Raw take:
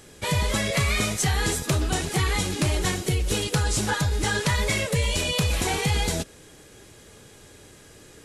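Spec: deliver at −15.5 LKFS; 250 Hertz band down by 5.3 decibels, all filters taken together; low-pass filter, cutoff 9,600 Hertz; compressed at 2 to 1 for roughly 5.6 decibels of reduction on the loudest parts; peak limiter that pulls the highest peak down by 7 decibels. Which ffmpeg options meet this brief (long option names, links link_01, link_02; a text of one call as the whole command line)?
ffmpeg -i in.wav -af "lowpass=9600,equalizer=frequency=250:width_type=o:gain=-9,acompressor=threshold=-31dB:ratio=2,volume=17.5dB,alimiter=limit=-7dB:level=0:latency=1" out.wav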